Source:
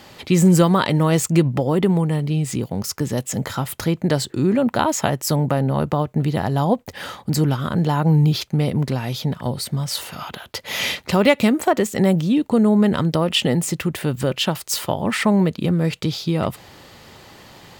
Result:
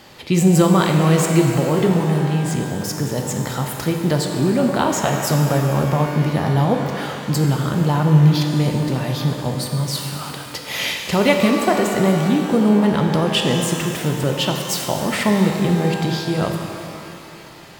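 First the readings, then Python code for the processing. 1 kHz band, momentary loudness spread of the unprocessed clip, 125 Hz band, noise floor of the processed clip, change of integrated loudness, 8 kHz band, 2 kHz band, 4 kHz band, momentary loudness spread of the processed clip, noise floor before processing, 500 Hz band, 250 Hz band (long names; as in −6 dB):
+2.0 dB, 9 LU, +2.0 dB, −36 dBFS, +1.5 dB, +1.0 dB, +2.0 dB, +1.0 dB, 9 LU, −48 dBFS, +1.5 dB, +1.0 dB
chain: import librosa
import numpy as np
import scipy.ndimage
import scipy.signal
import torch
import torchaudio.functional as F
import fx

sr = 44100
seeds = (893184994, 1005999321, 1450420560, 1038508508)

y = fx.rev_shimmer(x, sr, seeds[0], rt60_s=2.6, semitones=12, shimmer_db=-8, drr_db=2.5)
y = y * 10.0 ** (-1.0 / 20.0)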